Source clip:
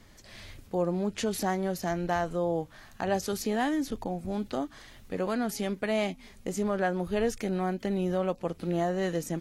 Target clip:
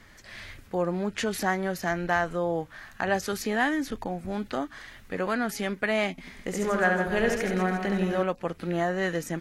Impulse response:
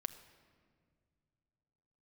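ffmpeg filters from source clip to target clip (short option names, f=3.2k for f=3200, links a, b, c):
-filter_complex "[0:a]equalizer=f=1.7k:t=o:w=1.3:g=9.5,asettb=1/sr,asplit=3[a][b][c];[a]atrim=end=6.114[d];[b]atrim=start=6.11:end=8.23,asetpts=PTS-STARTPTS,afade=t=in:d=0.004:c=qsin,afade=t=out:st=2.116:d=0.004:c=qsin,aecho=1:1:70|161|279.3|433.1|633:0.631|0.398|0.251|0.158|0.1,atrim=end_sample=93492[e];[c]atrim=start=8.226[f];[d][e]acrossfade=d=0.004:c1=hsin:c2=qsin[g];[g][f]acrossfade=d=0.004:c1=qsin:c2=hsin"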